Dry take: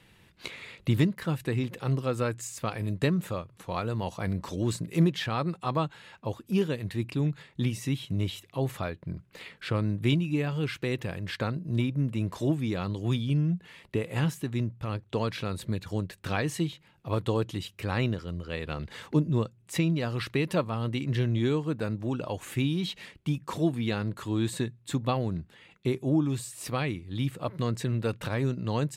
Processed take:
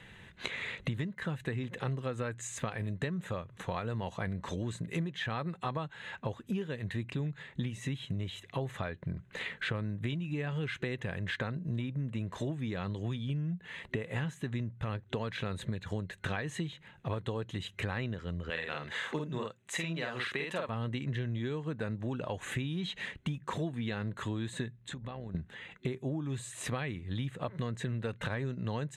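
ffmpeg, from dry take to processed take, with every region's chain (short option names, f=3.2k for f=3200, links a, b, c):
-filter_complex "[0:a]asettb=1/sr,asplit=3[a][b][c];[a]atrim=end=18.504[d];[b]atrim=start=18.5:end=20.69,asetpts=PTS-STARTPTS,afade=t=in:d=0.004:c=qsin,afade=t=out:st=2.186:d=0.004:c=qsin,highpass=f=610:p=1,asplit=2[e][f];[f]adelay=48,volume=-2dB[g];[e][g]amix=inputs=2:normalize=0,atrim=end_sample=96579[h];[c]atrim=start=20.686[i];[d][h]acrossfade=d=0.004:c1=hsin:c2=qsin[j];[j][i]acrossfade=d=0.004:c1=qsin:c2=hsin,asettb=1/sr,asplit=3[k][l][m];[k]atrim=end=24.764[n];[l]atrim=start=24.76:end=25.35,asetpts=PTS-STARTPTS,afade=t=in:d=0.004:c=qsin,afade=t=out:st=0.586:d=0.004:c=qsin,tremolo=f=75:d=0.462,highshelf=f=12k:g=-11.5,acompressor=threshold=-42dB:ratio=20:attack=3.2:release=140:knee=1:detection=peak[o];[m]atrim=start=25.346[p];[n][o]acrossfade=d=0.004:c1=hsin:c2=qsin[q];[q][p]acrossfade=d=0.004:c1=qsin:c2=hsin,superequalizer=6b=0.631:11b=1.78:14b=0.316,acompressor=threshold=-37dB:ratio=10,lowpass=6.9k,volume=5dB"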